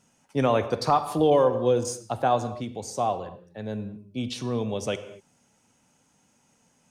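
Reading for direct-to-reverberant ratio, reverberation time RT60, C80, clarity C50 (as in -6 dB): 11.5 dB, no single decay rate, 14.0 dB, 12.5 dB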